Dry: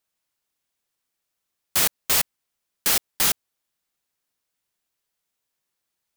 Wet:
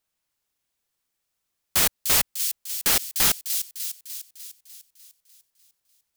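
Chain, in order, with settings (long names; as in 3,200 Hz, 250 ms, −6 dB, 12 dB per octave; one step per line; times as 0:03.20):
low-shelf EQ 91 Hz +6.5 dB
on a send: delay with a high-pass on its return 299 ms, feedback 57%, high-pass 4,000 Hz, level −6 dB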